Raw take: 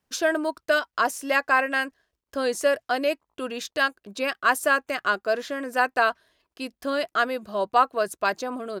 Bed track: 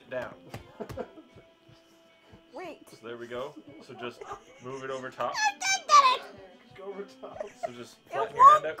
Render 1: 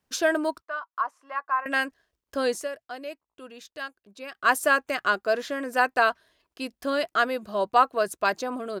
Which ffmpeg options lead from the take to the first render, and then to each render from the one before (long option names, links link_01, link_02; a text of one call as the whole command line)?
ffmpeg -i in.wav -filter_complex "[0:a]asettb=1/sr,asplit=3[link_01][link_02][link_03];[link_01]atrim=end=0.624[link_04];[link_02]atrim=start=0.62:end=1.66,asetpts=PTS-STARTPTS,afade=type=in:duration=0.004:curve=qsin,afade=type=out:start_time=1.036:duration=0.004:curve=qsin,bandpass=frequency=1100:width_type=q:width=4.8[link_05];[link_03]atrim=start=1.656[link_06];[link_04][link_05]acrossfade=duration=0.004:curve1=hsin:curve2=qsin[link_07];[link_07][link_06]acrossfade=duration=0.004:curve1=qsin:curve2=hsin,asplit=3[link_08][link_09][link_10];[link_08]atrim=end=2.68,asetpts=PTS-STARTPTS,afade=type=out:start_time=2.5:duration=0.18:silence=0.237137[link_11];[link_09]atrim=start=2.68:end=4.31,asetpts=PTS-STARTPTS,volume=-12.5dB[link_12];[link_10]atrim=start=4.31,asetpts=PTS-STARTPTS,afade=type=in:duration=0.18:silence=0.237137[link_13];[link_11][link_12][link_13]concat=n=3:v=0:a=1" out.wav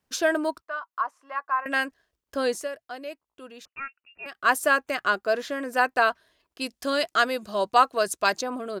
ffmpeg -i in.wav -filter_complex "[0:a]asettb=1/sr,asplit=3[link_01][link_02][link_03];[link_01]atrim=end=3.654[link_04];[link_02]atrim=start=3.65:end=4.26,asetpts=PTS-STARTPTS,afade=type=in:duration=0.004:curve=qsin,afade=type=out:start_time=0.606:duration=0.004:curve=qsin,lowpass=frequency=2600:width_type=q:width=0.5098,lowpass=frequency=2600:width_type=q:width=0.6013,lowpass=frequency=2600:width_type=q:width=0.9,lowpass=frequency=2600:width_type=q:width=2.563,afreqshift=-3000[link_05];[link_03]atrim=start=4.256[link_06];[link_04][link_05]acrossfade=duration=0.004:curve1=hsin:curve2=qsin[link_07];[link_07][link_06]acrossfade=duration=0.004:curve1=qsin:curve2=hsin,asettb=1/sr,asplit=3[link_08][link_09][link_10];[link_08]atrim=end=6.614[link_11];[link_09]atrim=start=6.61:end=8.41,asetpts=PTS-STARTPTS,afade=type=in:duration=0.004:curve=qsin,afade=type=out:start_time=1.796:duration=0.004:curve=qsin,equalizer=frequency=6500:width_type=o:width=2.1:gain=8.5[link_12];[link_10]atrim=start=8.406[link_13];[link_11][link_12]acrossfade=duration=0.004:curve1=hsin:curve2=qsin[link_14];[link_14][link_13]acrossfade=duration=0.004:curve1=qsin:curve2=hsin" out.wav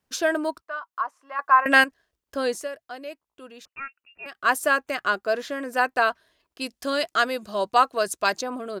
ffmpeg -i in.wav -filter_complex "[0:a]asplit=3[link_01][link_02][link_03];[link_01]atrim=end=1.392[link_04];[link_02]atrim=start=1.388:end=1.842,asetpts=PTS-STARTPTS,volume=9dB[link_05];[link_03]atrim=start=1.838[link_06];[link_04][link_05]acrossfade=duration=0.004:curve1=hsin:curve2=hsin[link_07];[link_07][link_06]acrossfade=duration=0.004:curve1=hsin:curve2=hsin" out.wav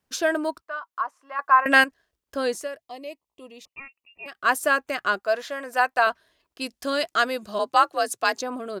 ffmpeg -i in.wav -filter_complex "[0:a]asettb=1/sr,asplit=3[link_01][link_02][link_03];[link_01]atrim=end=2.814[link_04];[link_02]atrim=start=2.81:end=4.28,asetpts=PTS-STARTPTS,afade=type=in:duration=0.004:curve=qsin,afade=type=out:start_time=1.466:duration=0.004:curve=qsin,asuperstop=centerf=1500:order=4:qfactor=1.9[link_05];[link_03]atrim=start=4.276[link_06];[link_04][link_05]acrossfade=duration=0.004:curve1=hsin:curve2=qsin[link_07];[link_07][link_06]acrossfade=duration=0.004:curve1=qsin:curve2=hsin,asettb=1/sr,asplit=3[link_08][link_09][link_10];[link_08]atrim=end=5.194[link_11];[link_09]atrim=start=5.19:end=6.07,asetpts=PTS-STARTPTS,afade=type=in:duration=0.004:curve=qsin,afade=type=out:start_time=0.876:duration=0.004:curve=qsin,lowshelf=frequency=490:width_type=q:width=1.5:gain=-7[link_12];[link_10]atrim=start=6.066[link_13];[link_11][link_12]acrossfade=duration=0.004:curve1=hsin:curve2=qsin[link_14];[link_14][link_13]acrossfade=duration=0.004:curve1=qsin:curve2=hsin,asplit=3[link_15][link_16][link_17];[link_15]afade=type=out:start_time=7.58:duration=0.02[link_18];[link_16]afreqshift=56,afade=type=in:start_time=7.58:duration=0.02,afade=type=out:start_time=8.39:duration=0.02[link_19];[link_17]afade=type=in:start_time=8.39:duration=0.02[link_20];[link_18][link_19][link_20]amix=inputs=3:normalize=0" out.wav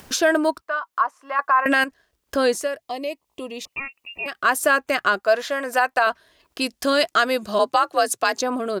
ffmpeg -i in.wav -filter_complex "[0:a]asplit=2[link_01][link_02];[link_02]acompressor=mode=upward:threshold=-26dB:ratio=2.5,volume=1dB[link_03];[link_01][link_03]amix=inputs=2:normalize=0,alimiter=limit=-8dB:level=0:latency=1:release=98" out.wav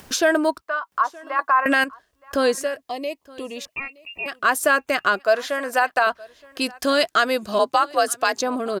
ffmpeg -i in.wav -af "aecho=1:1:920:0.0668" out.wav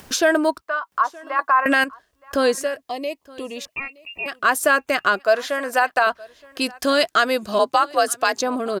ffmpeg -i in.wav -af "volume=1dB" out.wav